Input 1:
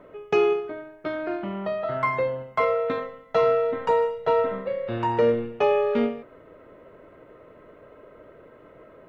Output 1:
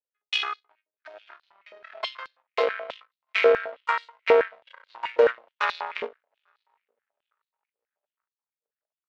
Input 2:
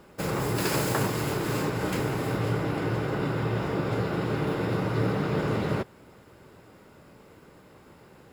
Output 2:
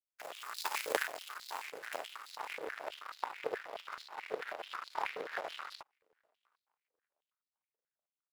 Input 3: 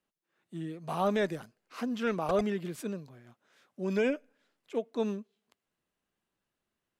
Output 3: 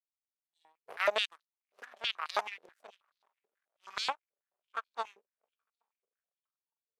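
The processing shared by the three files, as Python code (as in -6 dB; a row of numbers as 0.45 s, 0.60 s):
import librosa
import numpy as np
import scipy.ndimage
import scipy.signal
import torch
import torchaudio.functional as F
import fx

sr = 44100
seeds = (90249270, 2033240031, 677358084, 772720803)

y = fx.echo_diffused(x, sr, ms=822, feedback_pct=60, wet_db=-14.5)
y = fx.power_curve(y, sr, exponent=3.0)
y = fx.filter_held_highpass(y, sr, hz=9.3, low_hz=480.0, high_hz=4200.0)
y = y * librosa.db_to_amplitude(3.0)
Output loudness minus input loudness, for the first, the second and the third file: -1.0 LU, -13.0 LU, -2.5 LU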